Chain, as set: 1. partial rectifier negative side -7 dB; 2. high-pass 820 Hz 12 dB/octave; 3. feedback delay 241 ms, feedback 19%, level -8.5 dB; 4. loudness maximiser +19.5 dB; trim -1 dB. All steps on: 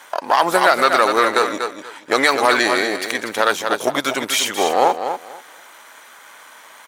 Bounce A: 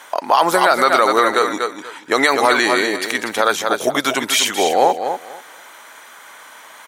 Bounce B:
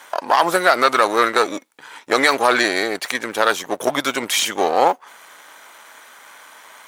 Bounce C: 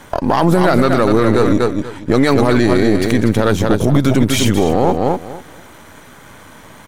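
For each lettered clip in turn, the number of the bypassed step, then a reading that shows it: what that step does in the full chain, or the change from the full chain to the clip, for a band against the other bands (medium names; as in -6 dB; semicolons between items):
1, distortion -9 dB; 3, momentary loudness spread change -2 LU; 2, 125 Hz band +28.5 dB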